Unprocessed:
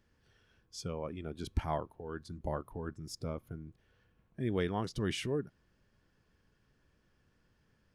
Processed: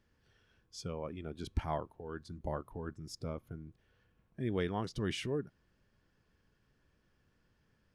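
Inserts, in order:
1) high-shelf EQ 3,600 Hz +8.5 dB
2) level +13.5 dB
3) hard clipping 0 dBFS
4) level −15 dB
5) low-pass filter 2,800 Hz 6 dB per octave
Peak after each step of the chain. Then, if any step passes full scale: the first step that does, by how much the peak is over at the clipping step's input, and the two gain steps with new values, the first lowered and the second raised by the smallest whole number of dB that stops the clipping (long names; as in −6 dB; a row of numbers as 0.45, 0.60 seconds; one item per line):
−19.0, −5.5, −5.5, −20.5, −21.0 dBFS
no step passes full scale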